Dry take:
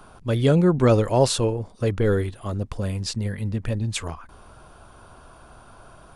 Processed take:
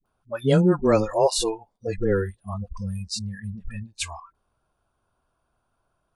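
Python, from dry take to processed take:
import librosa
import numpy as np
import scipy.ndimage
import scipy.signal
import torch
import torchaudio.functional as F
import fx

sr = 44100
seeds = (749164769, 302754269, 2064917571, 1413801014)

y = fx.noise_reduce_blind(x, sr, reduce_db=26)
y = fx.dispersion(y, sr, late='highs', ms=58.0, hz=530.0)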